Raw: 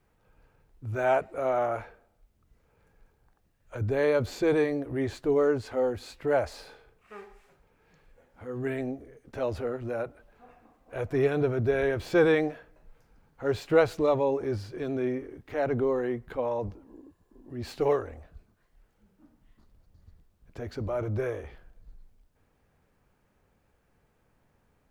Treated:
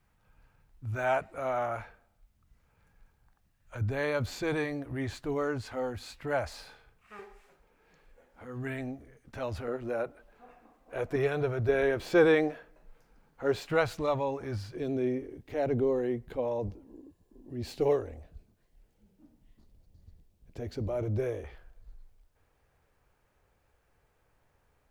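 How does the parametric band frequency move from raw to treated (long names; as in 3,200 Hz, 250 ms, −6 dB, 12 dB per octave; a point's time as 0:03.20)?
parametric band −9.5 dB 1.2 octaves
420 Hz
from 0:07.19 110 Hz
from 0:08.45 420 Hz
from 0:09.68 90 Hz
from 0:11.16 260 Hz
from 0:11.69 83 Hz
from 0:13.67 390 Hz
from 0:14.75 1,300 Hz
from 0:21.44 210 Hz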